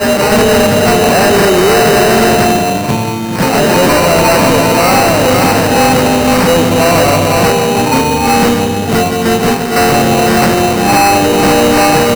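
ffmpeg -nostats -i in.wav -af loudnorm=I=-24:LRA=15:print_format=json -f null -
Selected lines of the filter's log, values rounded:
"input_i" : "-9.1",
"input_tp" : "-3.8",
"input_lra" : "1.6",
"input_thresh" : "-19.1",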